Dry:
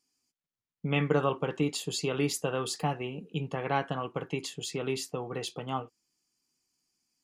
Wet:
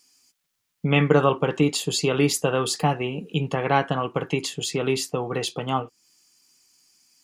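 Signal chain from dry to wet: mismatched tape noise reduction encoder only; gain +8.5 dB

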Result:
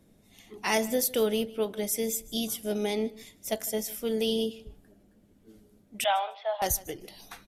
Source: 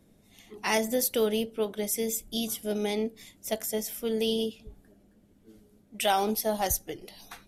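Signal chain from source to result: 6.04–6.62 Chebyshev band-pass 590–3500 Hz, order 4; on a send: feedback echo 0.152 s, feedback 15%, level -21 dB

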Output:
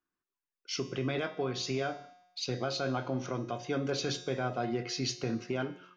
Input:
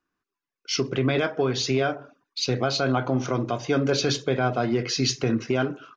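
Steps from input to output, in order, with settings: resonator 180 Hz, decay 0.92 s, harmonics all, mix 70%

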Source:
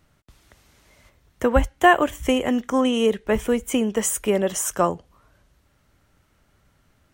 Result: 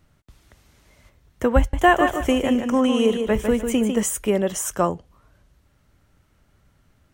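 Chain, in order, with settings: low shelf 260 Hz +5 dB; 1.58–4.03 warbling echo 0.15 s, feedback 31%, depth 59 cents, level -6.5 dB; gain -1.5 dB

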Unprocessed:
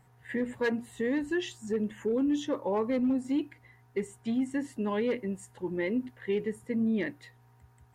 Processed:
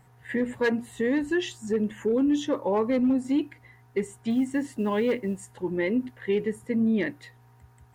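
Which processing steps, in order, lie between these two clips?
4.3–5.38 companded quantiser 8-bit; gain +4.5 dB

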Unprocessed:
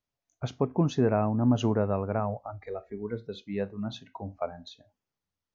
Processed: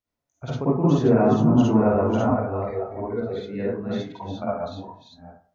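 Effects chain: reverse delay 0.375 s, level -4 dB; reverb RT60 0.45 s, pre-delay 43 ms, DRR -8 dB; gain -4 dB

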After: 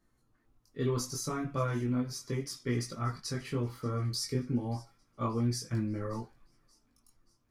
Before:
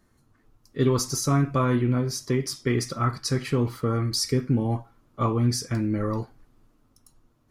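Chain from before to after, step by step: chorus voices 6, 0.32 Hz, delay 21 ms, depth 4.1 ms; thin delay 0.58 s, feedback 47%, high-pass 2500 Hz, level -21.5 dB; gain -6 dB

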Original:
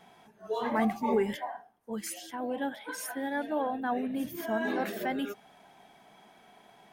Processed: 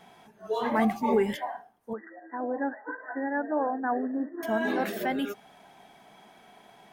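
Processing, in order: 1.93–4.43 brick-wall FIR band-pass 230–2000 Hz; gain +3 dB

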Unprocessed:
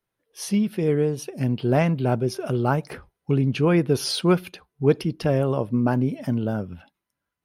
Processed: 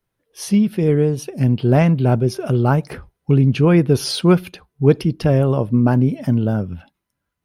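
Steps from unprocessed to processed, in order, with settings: low shelf 190 Hz +8 dB; gain +3 dB

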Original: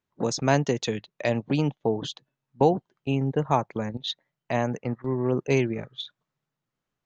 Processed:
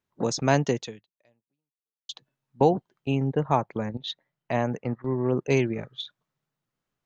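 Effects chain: 0.75–2.09 fade out exponential; 3.27–5.46 high shelf 5300 Hz -9 dB

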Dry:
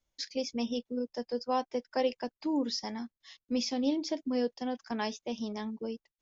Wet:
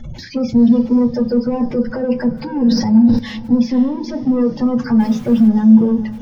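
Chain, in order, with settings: power-law curve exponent 0.35; spectral gate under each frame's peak -20 dB strong; 1.33–1.91 tilt -2 dB/oct; in parallel at +3 dB: compressor, threshold -32 dBFS, peak gain reduction 11.5 dB; on the sum: limiter -17.5 dBFS, peak gain reduction 5 dB; 5–5.48 requantised 6-bit, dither triangular; hard clip -19 dBFS, distortion -26 dB; tone controls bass +11 dB, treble -15 dB; diffused feedback echo 0.482 s, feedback 40%, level -15 dB; on a send at -5 dB: reverb RT60 0.30 s, pre-delay 3 ms; 2.56–3.19 on the sum: sustainer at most 52 dB/s; gain -2 dB

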